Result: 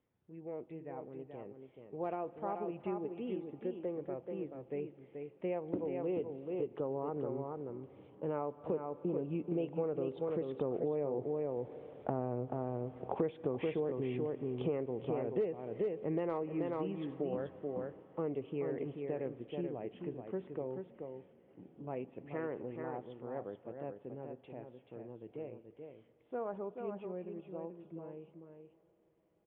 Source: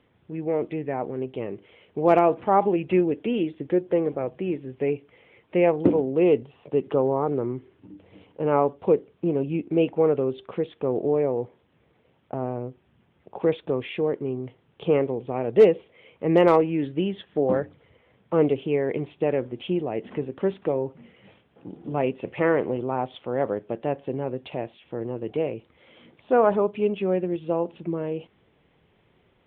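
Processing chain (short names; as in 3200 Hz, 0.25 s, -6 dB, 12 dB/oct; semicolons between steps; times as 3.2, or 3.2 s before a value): Doppler pass-by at 12.48, 7 m/s, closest 5.8 m; echo 0.432 s -6.5 dB; on a send at -20.5 dB: reverb RT60 5.7 s, pre-delay 77 ms; on the sum: compressor 5:1, threshold -38 dBFS, peak gain reduction 16.5 dB; LPF 1700 Hz 6 dB/oct; gain +5.5 dB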